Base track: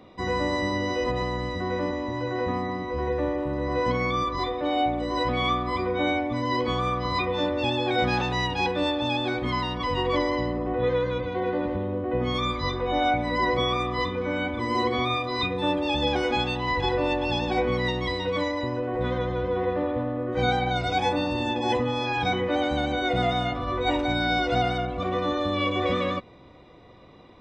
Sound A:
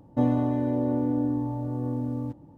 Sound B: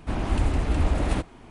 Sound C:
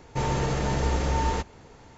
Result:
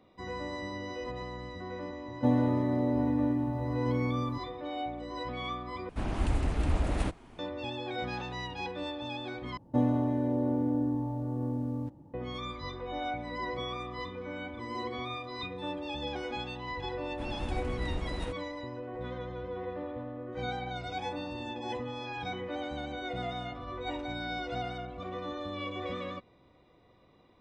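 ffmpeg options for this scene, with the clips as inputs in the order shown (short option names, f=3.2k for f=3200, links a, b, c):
-filter_complex "[1:a]asplit=2[a][b];[2:a]asplit=2[c][d];[0:a]volume=-12dB,asplit=3[e][f][g];[e]atrim=end=5.894[h];[c]atrim=end=1.5,asetpts=PTS-STARTPTS,volume=-5.5dB[i];[f]atrim=start=7.386:end=9.574[j];[b]atrim=end=2.57,asetpts=PTS-STARTPTS,volume=-3.5dB[k];[g]atrim=start=12.136[l];[a]atrim=end=2.57,asetpts=PTS-STARTPTS,volume=-2.5dB,afade=t=in:d=0.004:c=hsin,afade=t=out:st=2.566:d=0.004:c=hsin,adelay=2060[m];[d]atrim=end=1.5,asetpts=PTS-STARTPTS,volume=-12.5dB,afade=t=in:d=0.004:c=hsin,afade=t=out:st=1.496:d=0.004:c=hsin,adelay=17110[n];[h][i]acrossfade=d=0.004:c1=hsin:c2=hsin[o];[o][j]acrossfade=d=0.004:c1=hsin:c2=hsin[p];[p][k]acrossfade=d=0.004:c1=hsin:c2=hsin[q];[q][l]acrossfade=d=0.004:c1=hsin:c2=hsin[r];[r][m][n]amix=inputs=3:normalize=0"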